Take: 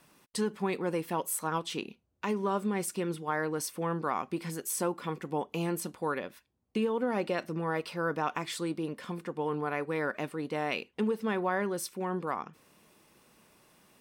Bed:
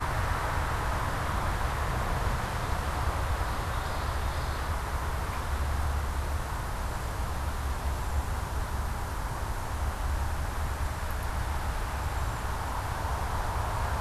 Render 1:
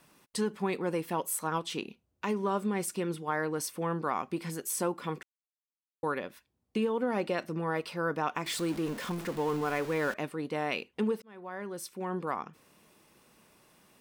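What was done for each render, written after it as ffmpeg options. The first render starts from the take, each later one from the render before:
-filter_complex "[0:a]asettb=1/sr,asplit=3[a][b][c];[a]atrim=end=8.464[d];[b]atrim=start=8.46:end=10.14,asetpts=PTS-STARTPTS,afade=t=in:d=0.004:c=qsin,afade=t=out:st=1.676:d=0.004:c=qsin,aeval=exprs='val(0)+0.5*0.0141*sgn(val(0))':c=same[e];[c]atrim=start=10.136[f];[d][e]acrossfade=d=0.004:c1=hsin:c2=qsin[g];[g][f]acrossfade=d=0.004:c1=qsin:c2=hsin,asplit=4[h][i][j][k];[h]atrim=end=5.23,asetpts=PTS-STARTPTS,afade=t=out:st=5.226:d=0.004:c=hsin[l];[i]atrim=start=5.23:end=6.03,asetpts=PTS-STARTPTS,volume=0[m];[j]atrim=start=6.03:end=11.22,asetpts=PTS-STARTPTS,afade=t=in:d=0.004:c=hsin,afade=t=out:st=5.186:d=0.004:c=hsin[n];[k]atrim=start=11.22,asetpts=PTS-STARTPTS,afade=t=in:d=1.03[o];[l][m][n][o]concat=n=4:v=0:a=1"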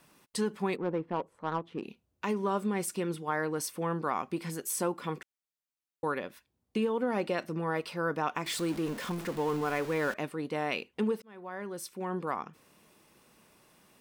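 -filter_complex "[0:a]asplit=3[a][b][c];[a]afade=t=out:st=0.75:d=0.02[d];[b]adynamicsmooth=sensitivity=1.5:basefreq=790,afade=t=in:st=0.75:d=0.02,afade=t=out:st=1.82:d=0.02[e];[c]afade=t=in:st=1.82:d=0.02[f];[d][e][f]amix=inputs=3:normalize=0"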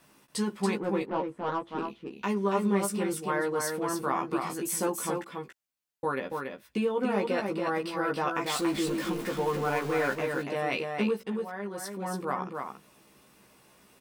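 -filter_complex "[0:a]asplit=2[a][b];[b]adelay=15,volume=-3dB[c];[a][c]amix=inputs=2:normalize=0,aecho=1:1:282:0.596"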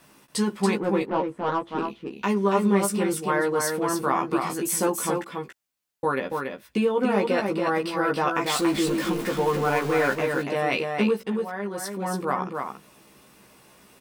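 -af "volume=5.5dB"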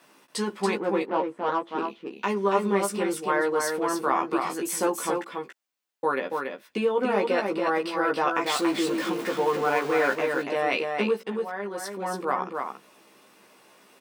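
-af "highpass=290,equalizer=f=13k:w=0.45:g=-6"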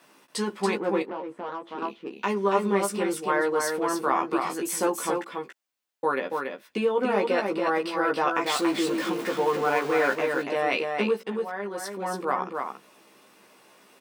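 -filter_complex "[0:a]asettb=1/sr,asplit=3[a][b][c];[a]atrim=end=1.024[d];[b]atrim=start=1.02:end=1.82,asetpts=PTS-STARTPTS,afade=t=in:d=0.004:c=qsin,afade=t=out:st=0.796:d=0.004:c=qsin,acompressor=threshold=-31dB:ratio=4:attack=3.2:release=140:knee=1:detection=peak[e];[c]atrim=start=1.816[f];[d][e]acrossfade=d=0.004:c1=hsin:c2=qsin[g];[g][f]acrossfade=d=0.004:c1=qsin:c2=hsin"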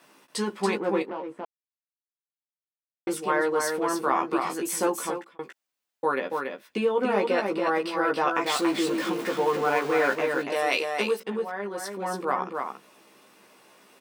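-filter_complex "[0:a]asettb=1/sr,asplit=3[a][b][c];[a]atrim=end=10.524[d];[b]atrim=start=10.52:end=11.2,asetpts=PTS-STARTPTS,afade=t=in:d=0.004:c=qsin,afade=t=out:st=0.676:d=0.004:c=qsin,bass=f=250:g=-10,treble=f=4k:g=12[e];[c]atrim=start=11.196[f];[d][e]acrossfade=d=0.004:c1=hsin:c2=qsin[g];[g][f]acrossfade=d=0.004:c1=qsin:c2=hsin,asplit=4[h][i][j][k];[h]atrim=end=1.45,asetpts=PTS-STARTPTS,afade=t=out:st=1.446:d=0.004:c=hsin[l];[i]atrim=start=1.45:end=3.07,asetpts=PTS-STARTPTS,volume=0[m];[j]atrim=start=3.07:end=5.39,asetpts=PTS-STARTPTS,afade=t=in:d=0.004:c=hsin,afade=t=out:st=1.91:d=0.41[n];[k]atrim=start=5.39,asetpts=PTS-STARTPTS,afade=t=in:d=0.004:c=hsin[o];[l][m][n][o]concat=n=4:v=0:a=1"

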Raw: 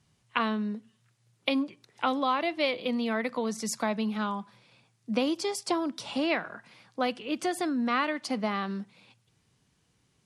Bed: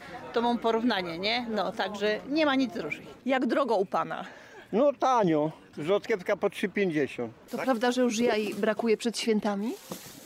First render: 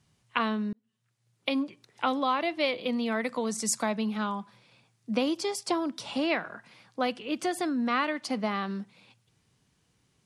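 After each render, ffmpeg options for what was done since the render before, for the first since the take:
-filter_complex "[0:a]asettb=1/sr,asplit=3[a][b][c];[a]atrim=end=3.124[d];[b]atrim=start=3.12:end=3.92,asetpts=PTS-STARTPTS,afade=t=in:d=0.004:c=qsin,afade=t=out:st=0.796:d=0.004:c=qsin,equalizer=f=8.3k:w=1.6:g=9.5[e];[c]atrim=start=3.916[f];[d][e]acrossfade=d=0.004:c1=hsin:c2=qsin[g];[g][f]acrossfade=d=0.004:c1=qsin:c2=hsin,asplit=2[h][i];[h]atrim=end=0.73,asetpts=PTS-STARTPTS,afade=t=out:st=0.726:d=0.004:c=hsin[j];[i]atrim=start=0.73,asetpts=PTS-STARTPTS,afade=t=in:d=0.93[k];[j][k]concat=n=2:v=0:a=1"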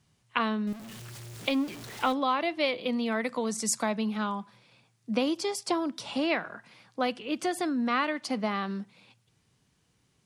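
-filter_complex "[0:a]asettb=1/sr,asplit=3[a][b][c];[a]atrim=end=0.674[d];[b]atrim=start=0.67:end=2.13,asetpts=PTS-STARTPTS,afade=t=in:d=0.004:c=qsin,afade=t=out:st=1.456:d=0.004:c=qsin,aeval=exprs='val(0)+0.5*0.0133*sgn(val(0))':c=same[e];[c]atrim=start=2.126[f];[d][e]acrossfade=d=0.004:c1=hsin:c2=qsin[g];[g][f]acrossfade=d=0.004:c1=qsin:c2=hsin"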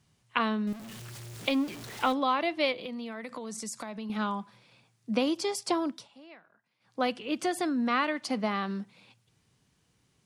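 -filter_complex "[0:a]asettb=1/sr,asplit=3[a][b][c];[a]atrim=end=2.724[d];[b]atrim=start=2.72:end=4.1,asetpts=PTS-STARTPTS,afade=t=in:d=0.004:c=qsin,afade=t=out:st=1.376:d=0.004:c=qsin,acompressor=threshold=-35dB:ratio=6:attack=3.2:release=140:knee=1:detection=peak[e];[c]atrim=start=4.096[f];[d][e]acrossfade=d=0.004:c1=hsin:c2=qsin[g];[g][f]acrossfade=d=0.004:c1=qsin:c2=hsin,asplit=3[h][i][j];[h]atrim=end=6.08,asetpts=PTS-STARTPTS,afade=t=out:st=5.88:d=0.2:silence=0.0668344[k];[i]atrim=start=6.08:end=6.8,asetpts=PTS-STARTPTS,volume=-23.5dB[l];[j]atrim=start=6.8,asetpts=PTS-STARTPTS,afade=t=in:d=0.2:silence=0.0668344[m];[k][l][m]concat=n=3:v=0:a=1"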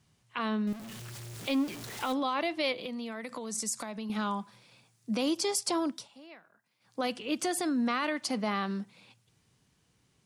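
-filter_complex "[0:a]acrossover=split=5300[a][b];[a]alimiter=limit=-22dB:level=0:latency=1:release=26[c];[b]dynaudnorm=f=390:g=11:m=7dB[d];[c][d]amix=inputs=2:normalize=0"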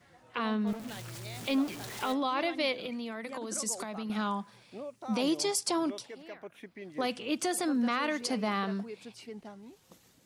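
-filter_complex "[1:a]volume=-18.5dB[a];[0:a][a]amix=inputs=2:normalize=0"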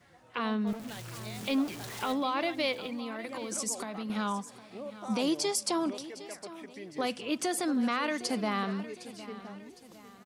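-af "aecho=1:1:759|1518|2277|3036:0.158|0.0682|0.0293|0.0126"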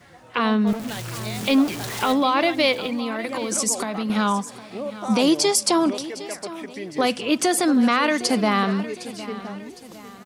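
-af "volume=11dB"

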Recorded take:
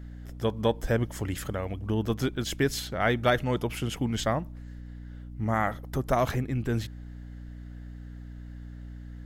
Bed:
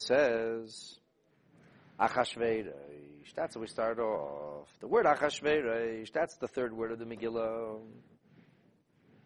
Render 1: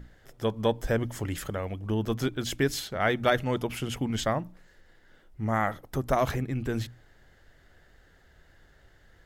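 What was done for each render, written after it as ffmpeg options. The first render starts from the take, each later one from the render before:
-af "bandreject=f=60:t=h:w=6,bandreject=f=120:t=h:w=6,bandreject=f=180:t=h:w=6,bandreject=f=240:t=h:w=6,bandreject=f=300:t=h:w=6"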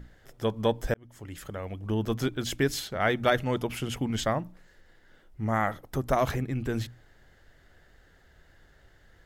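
-filter_complex "[0:a]asplit=2[a][b];[a]atrim=end=0.94,asetpts=PTS-STARTPTS,afade=t=out:st=0.936:d=0.004:c=hsin[c];[b]atrim=start=0.94,asetpts=PTS-STARTPTS,afade=t=in:d=1.02[d];[c][d]concat=n=2:v=0:a=1"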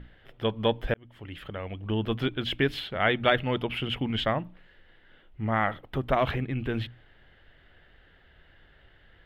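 -af "highshelf=f=4.5k:t=q:w=3:g=-14"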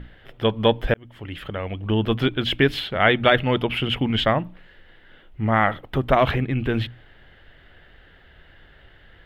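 -af "volume=7dB,alimiter=limit=-2dB:level=0:latency=1"

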